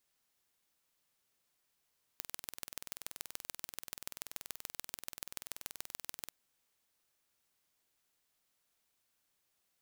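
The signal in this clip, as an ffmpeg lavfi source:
ffmpeg -f lavfi -i "aevalsrc='0.266*eq(mod(n,2120),0)*(0.5+0.5*eq(mod(n,6360),0))':duration=4.1:sample_rate=44100" out.wav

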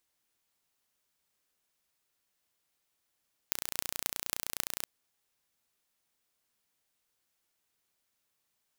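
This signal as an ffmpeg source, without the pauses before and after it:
ffmpeg -f lavfi -i "aevalsrc='0.841*eq(mod(n,1490),0)*(0.5+0.5*eq(mod(n,11920),0))':duration=1.35:sample_rate=44100" out.wav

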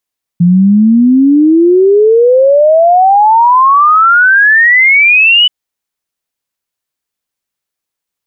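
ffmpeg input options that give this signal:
ffmpeg -f lavfi -i "aevalsrc='0.708*clip(min(t,5.08-t)/0.01,0,1)*sin(2*PI*170*5.08/log(3000/170)*(exp(log(3000/170)*t/5.08)-1))':duration=5.08:sample_rate=44100" out.wav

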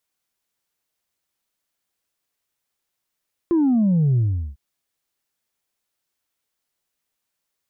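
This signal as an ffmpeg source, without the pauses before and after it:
ffmpeg -f lavfi -i "aevalsrc='0.178*clip((1.05-t)/0.39,0,1)*tanh(1.12*sin(2*PI*350*1.05/log(65/350)*(exp(log(65/350)*t/1.05)-1)))/tanh(1.12)':duration=1.05:sample_rate=44100" out.wav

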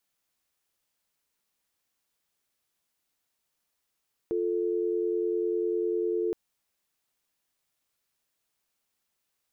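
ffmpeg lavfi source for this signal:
ffmpeg -f lavfi -i "aevalsrc='0.0398*(sin(2*PI*350*t)+sin(2*PI*440*t))':duration=2.02:sample_rate=44100" out.wav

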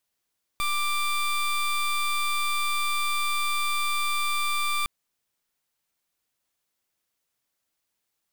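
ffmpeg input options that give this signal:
ffmpeg -f lavfi -i "aevalsrc='0.0531*(2*lt(mod(1180*t,1),0.19)-1)':duration=4.26:sample_rate=44100" out.wav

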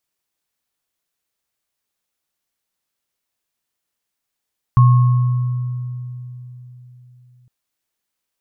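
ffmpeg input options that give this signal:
ffmpeg -f lavfi -i "aevalsrc='0.501*pow(10,-3*t/3.78)*sin(2*PI*124*t)+0.141*pow(10,-3*t/1.73)*sin(2*PI*1090*t)':duration=2.71:sample_rate=44100" out.wav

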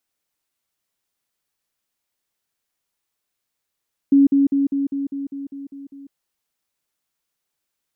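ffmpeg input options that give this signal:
ffmpeg -f lavfi -i "aevalsrc='pow(10,(-9-3*floor(t/0.2))/20)*sin(2*PI*278*t)*clip(min(mod(t,0.2),0.15-mod(t,0.2))/0.005,0,1)':duration=2:sample_rate=44100" out.wav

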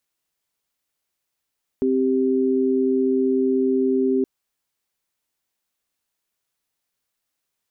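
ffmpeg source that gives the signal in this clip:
ffmpeg -f lavfi -i "aevalsrc='0.106*(sin(2*PI*261.63*t)+sin(2*PI*392*t))':duration=2.42:sample_rate=44100" out.wav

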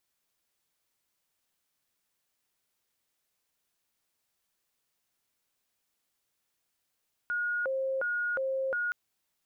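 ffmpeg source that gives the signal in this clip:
ffmpeg -f lavfi -i "aevalsrc='0.0398*sin(2*PI*(986*t+454/1.4*(0.5-abs(mod(1.4*t,1)-0.5))))':duration=1.62:sample_rate=44100" out.wav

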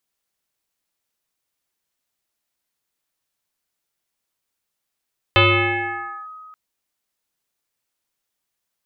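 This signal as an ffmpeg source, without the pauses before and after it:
ffmpeg -f lavfi -i "aevalsrc='0.355*pow(10,-3*t/2.22)*sin(2*PI*1260*t+4.4*clip(1-t/0.92,0,1)*sin(2*PI*0.36*1260*t))':duration=1.18:sample_rate=44100" out.wav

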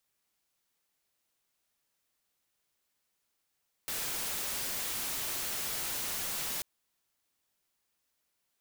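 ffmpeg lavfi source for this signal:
ffmpeg -f lavfi -i "anoisesrc=color=white:amplitude=0.0291:duration=2.74:sample_rate=44100:seed=1" out.wav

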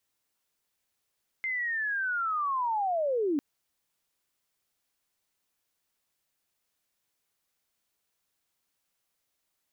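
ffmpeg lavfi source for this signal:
ffmpeg -f lavfi -i "aevalsrc='pow(10,(-28.5+4*t/1.95)/20)*sin(2*PI*(2100*t-1830*t*t/(2*1.95)))':duration=1.95:sample_rate=44100" out.wav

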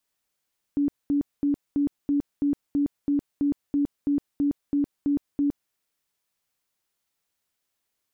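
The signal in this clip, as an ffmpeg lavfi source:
ffmpeg -f lavfi -i "aevalsrc='0.106*sin(2*PI*286*mod(t,0.33))*lt(mod(t,0.33),32/286)':duration=4.95:sample_rate=44100" out.wav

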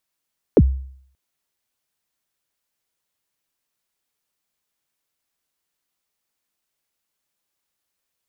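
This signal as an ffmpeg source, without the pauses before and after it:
ffmpeg -f lavfi -i "aevalsrc='0.531*pow(10,-3*t/0.61)*sin(2*PI*(550*0.049/log(66/550)*(exp(log(66/550)*min(t,0.049)/0.049)-1)+66*max(t-0.049,0)))':duration=0.58:sample_rate=44100" out.wav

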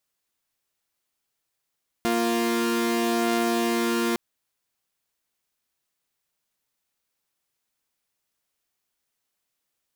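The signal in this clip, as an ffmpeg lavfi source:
ffmpeg -f lavfi -i "aevalsrc='0.0794*((2*mod(233.08*t,1)-1)+(2*mod(349.23*t,1)-1))':duration=2.11:sample_rate=44100" out.wav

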